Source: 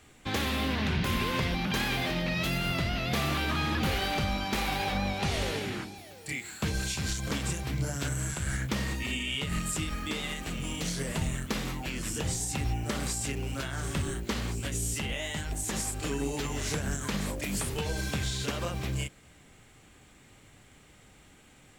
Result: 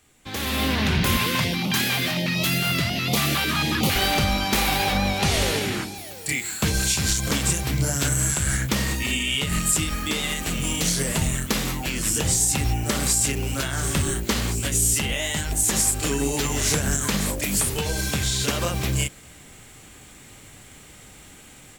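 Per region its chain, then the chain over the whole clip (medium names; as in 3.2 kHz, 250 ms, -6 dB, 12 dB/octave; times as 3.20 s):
1.17–3.96 s: high-pass 94 Hz 24 dB/octave + step-sequenced notch 11 Hz 320–1600 Hz
whole clip: treble shelf 5.9 kHz +10 dB; level rider gain up to 14 dB; trim -5.5 dB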